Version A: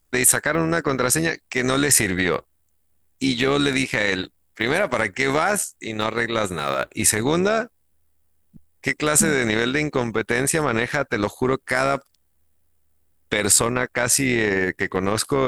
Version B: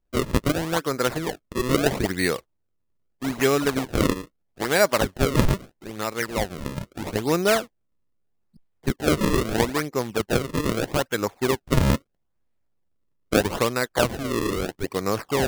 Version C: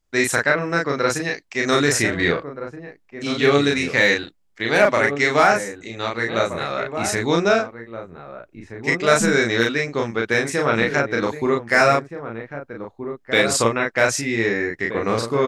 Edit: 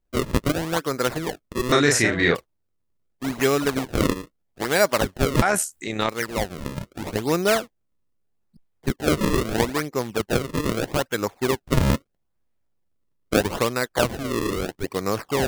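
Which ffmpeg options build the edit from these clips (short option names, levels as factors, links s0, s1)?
-filter_complex "[1:a]asplit=3[s0][s1][s2];[s0]atrim=end=1.722[s3];[2:a]atrim=start=1.718:end=2.352[s4];[s1]atrim=start=2.348:end=5.422[s5];[0:a]atrim=start=5.418:end=6.092[s6];[s2]atrim=start=6.088[s7];[s3][s4]acrossfade=d=0.004:c1=hsin:c2=hsin[s8];[s8][s5]acrossfade=d=0.004:c1=hsin:c2=hsin[s9];[s9][s6]acrossfade=d=0.004:c1=hsin:c2=hsin[s10];[s10][s7]acrossfade=d=0.004:c1=hsin:c2=hsin"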